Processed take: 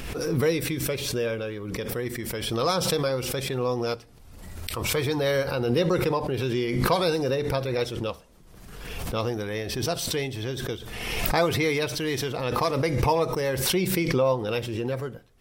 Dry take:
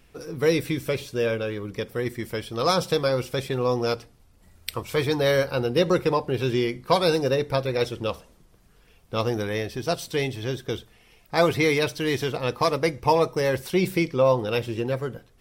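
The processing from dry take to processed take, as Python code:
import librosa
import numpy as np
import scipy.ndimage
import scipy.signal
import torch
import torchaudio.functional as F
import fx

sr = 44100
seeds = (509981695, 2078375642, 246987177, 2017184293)

y = fx.pre_swell(x, sr, db_per_s=35.0)
y = y * librosa.db_to_amplitude(-3.5)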